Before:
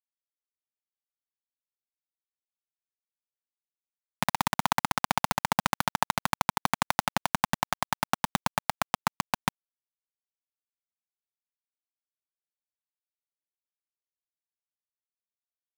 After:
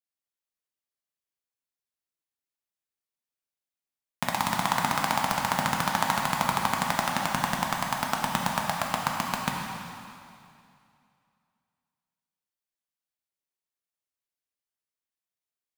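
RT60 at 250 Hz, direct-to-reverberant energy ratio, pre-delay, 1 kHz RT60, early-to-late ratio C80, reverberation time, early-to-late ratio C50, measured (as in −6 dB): 2.5 s, −1.0 dB, 5 ms, 2.5 s, 2.5 dB, 2.5 s, 1.5 dB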